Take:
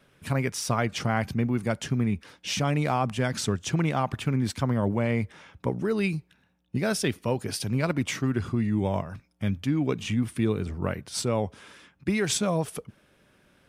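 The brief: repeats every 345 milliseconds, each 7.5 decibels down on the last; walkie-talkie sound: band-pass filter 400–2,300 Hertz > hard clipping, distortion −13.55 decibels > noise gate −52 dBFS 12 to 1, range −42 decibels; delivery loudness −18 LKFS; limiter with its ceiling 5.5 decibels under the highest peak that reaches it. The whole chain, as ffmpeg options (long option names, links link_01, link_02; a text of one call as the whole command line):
ffmpeg -i in.wav -af "alimiter=limit=-16dB:level=0:latency=1,highpass=400,lowpass=2300,aecho=1:1:345|690|1035|1380|1725:0.422|0.177|0.0744|0.0312|0.0131,asoftclip=type=hard:threshold=-26.5dB,agate=range=-42dB:threshold=-52dB:ratio=12,volume=17.5dB" out.wav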